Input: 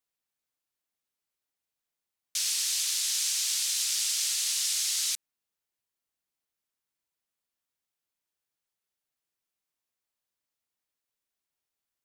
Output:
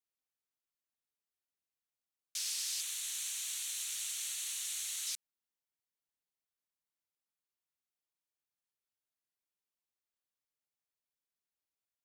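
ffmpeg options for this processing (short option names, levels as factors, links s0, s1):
-filter_complex "[0:a]asettb=1/sr,asplit=3[s0][s1][s2];[s0]atrim=end=2.814[s3];[s1]atrim=start=2.81:end=5.07,asetpts=PTS-STARTPTS,afade=t=in:d=0.004:c=qsin,afade=t=out:st=2.256:d=0.004:c=qsin,equalizer=f=5000:w=4.8:g=-14.5[s4];[s2]atrim=start=5.066[s5];[s3][s4]acrossfade=d=0.004:c1=hsin:c2=qsin[s6];[s6][s5]acrossfade=d=0.004:c1=qsin:c2=hsin,volume=0.376"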